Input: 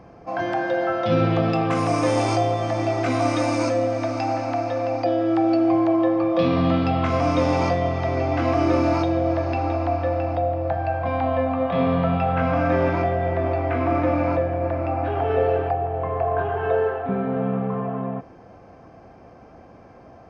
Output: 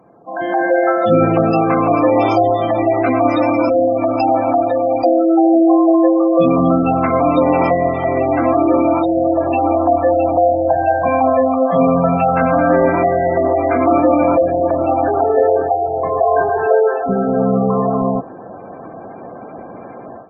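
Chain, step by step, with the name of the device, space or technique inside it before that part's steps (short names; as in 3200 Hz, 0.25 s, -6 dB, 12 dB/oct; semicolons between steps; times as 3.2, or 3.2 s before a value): noise-suppressed video call (HPF 180 Hz 12 dB/oct; spectral gate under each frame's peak -20 dB strong; AGC gain up to 16 dB; gain -1 dB; Opus 24 kbps 48000 Hz)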